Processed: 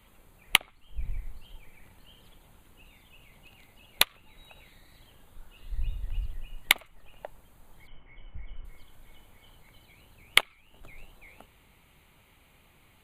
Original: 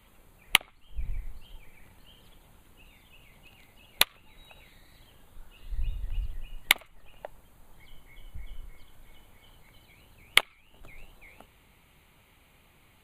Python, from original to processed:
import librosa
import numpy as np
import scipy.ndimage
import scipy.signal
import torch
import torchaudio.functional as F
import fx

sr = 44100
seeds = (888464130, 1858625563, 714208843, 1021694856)

y = fx.steep_lowpass(x, sr, hz=3100.0, slope=72, at=(7.87, 8.65))